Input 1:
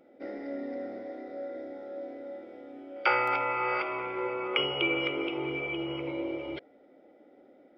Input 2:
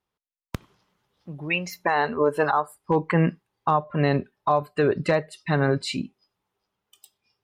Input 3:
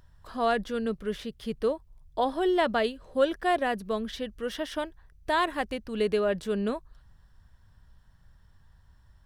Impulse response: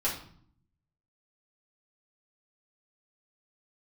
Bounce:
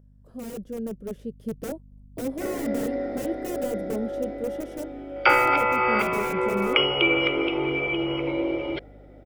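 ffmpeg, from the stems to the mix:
-filter_complex "[0:a]adelay=2200,volume=2.5dB[link_01];[2:a]aeval=exprs='(mod(14.1*val(0)+1,2)-1)/14.1':channel_layout=same,equalizer=frequency=125:width_type=o:width=1:gain=11,equalizer=frequency=250:width_type=o:width=1:gain=8,equalizer=frequency=500:width_type=o:width=1:gain=12,equalizer=frequency=1000:width_type=o:width=1:gain=-9,equalizer=frequency=2000:width_type=o:width=1:gain=-6,equalizer=frequency=4000:width_type=o:width=1:gain=-11,aeval=exprs='val(0)+0.01*(sin(2*PI*50*n/s)+sin(2*PI*2*50*n/s)/2+sin(2*PI*3*50*n/s)/3+sin(2*PI*4*50*n/s)/4+sin(2*PI*5*50*n/s)/5)':channel_layout=same,volume=-13dB[link_02];[link_01][link_02]amix=inputs=2:normalize=0,dynaudnorm=framelen=460:gausssize=5:maxgain=5.5dB"

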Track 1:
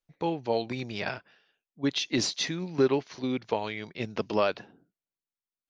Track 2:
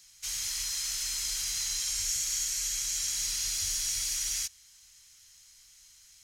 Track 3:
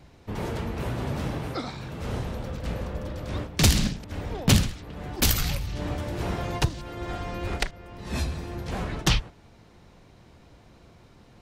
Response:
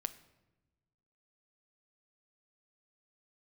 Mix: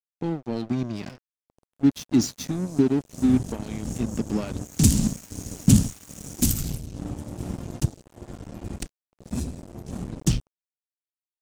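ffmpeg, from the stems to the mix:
-filter_complex "[0:a]asoftclip=type=tanh:threshold=-16.5dB,volume=3dB,asplit=2[link_01][link_02];[1:a]adelay=2000,volume=-9.5dB[link_03];[2:a]adynamicequalizer=threshold=0.0158:dfrequency=160:dqfactor=1.4:tfrequency=160:tqfactor=1.4:attack=5:release=100:ratio=0.375:range=1.5:mode=cutabove:tftype=bell,adelay=1200,volume=-2dB,afade=type=in:start_time=2.94:duration=0.33:silence=0.237137[link_04];[link_02]apad=whole_len=363068[link_05];[link_03][link_05]sidechaincompress=threshold=-40dB:ratio=8:attack=31:release=173[link_06];[link_01][link_06][link_04]amix=inputs=3:normalize=0,equalizer=frequency=125:width_type=o:width=1:gain=5,equalizer=frequency=250:width_type=o:width=1:gain=12,equalizer=frequency=500:width_type=o:width=1:gain=-8,equalizer=frequency=1000:width_type=o:width=1:gain=-12,equalizer=frequency=2000:width_type=o:width=1:gain=-9,equalizer=frequency=4000:width_type=o:width=1:gain=-7,equalizer=frequency=8000:width_type=o:width=1:gain=9,aeval=exprs='sgn(val(0))*max(abs(val(0))-0.0224,0)':channel_layout=same"

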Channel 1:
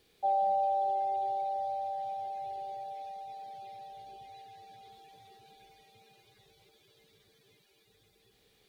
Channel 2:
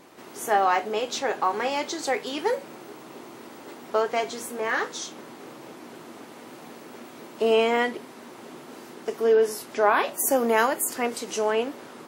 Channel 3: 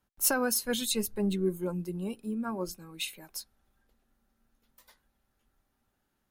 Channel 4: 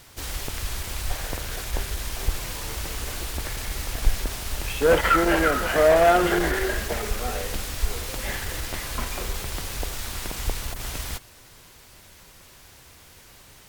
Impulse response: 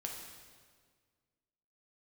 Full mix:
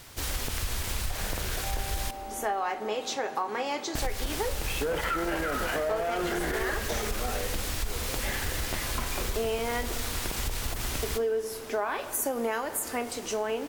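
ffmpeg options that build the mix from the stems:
-filter_complex "[0:a]adelay=1400,volume=-11dB[link_01];[1:a]adelay=1950,volume=-4.5dB,asplit=2[link_02][link_03];[link_03]volume=-8.5dB[link_04];[2:a]volume=-18.5dB[link_05];[3:a]alimiter=limit=-17.5dB:level=0:latency=1:release=36,volume=-0.5dB,asplit=3[link_06][link_07][link_08];[link_06]atrim=end=2.11,asetpts=PTS-STARTPTS,afade=type=out:start_time=2.106:duration=0.004:curve=hsin[link_09];[link_07]atrim=start=2.11:end=3.95,asetpts=PTS-STARTPTS,volume=0[link_10];[link_08]atrim=start=3.95,asetpts=PTS-STARTPTS,afade=type=in:duration=0.004:curve=hsin[link_11];[link_09][link_10][link_11]concat=n=3:v=0:a=1,asplit=2[link_12][link_13];[link_13]volume=-10.5dB[link_14];[4:a]atrim=start_sample=2205[link_15];[link_04][link_14]amix=inputs=2:normalize=0[link_16];[link_16][link_15]afir=irnorm=-1:irlink=0[link_17];[link_01][link_02][link_05][link_12][link_17]amix=inputs=5:normalize=0,acompressor=threshold=-26dB:ratio=6"

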